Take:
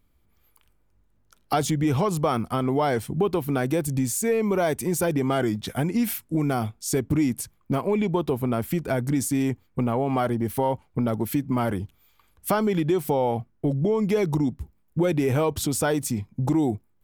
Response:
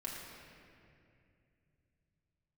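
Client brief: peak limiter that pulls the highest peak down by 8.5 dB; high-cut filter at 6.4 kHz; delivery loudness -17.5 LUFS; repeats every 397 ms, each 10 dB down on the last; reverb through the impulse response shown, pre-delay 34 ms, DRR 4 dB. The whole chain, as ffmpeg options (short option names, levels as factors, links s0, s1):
-filter_complex "[0:a]lowpass=6400,alimiter=limit=0.112:level=0:latency=1,aecho=1:1:397|794|1191|1588:0.316|0.101|0.0324|0.0104,asplit=2[s0][s1];[1:a]atrim=start_sample=2205,adelay=34[s2];[s1][s2]afir=irnorm=-1:irlink=0,volume=0.596[s3];[s0][s3]amix=inputs=2:normalize=0,volume=2.66"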